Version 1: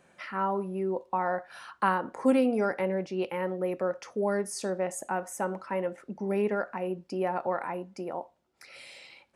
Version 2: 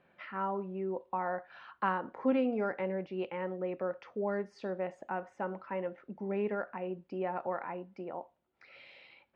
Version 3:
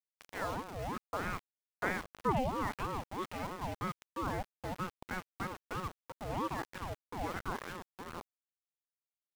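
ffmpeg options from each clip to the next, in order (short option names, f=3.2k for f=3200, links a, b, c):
-af "lowpass=f=3.5k:w=0.5412,lowpass=f=3.5k:w=1.3066,volume=-5.5dB"
-af "aeval=exprs='val(0)*gte(abs(val(0)),0.0119)':c=same,aeval=exprs='val(0)*sin(2*PI*500*n/s+500*0.5/3.1*sin(2*PI*3.1*n/s))':c=same"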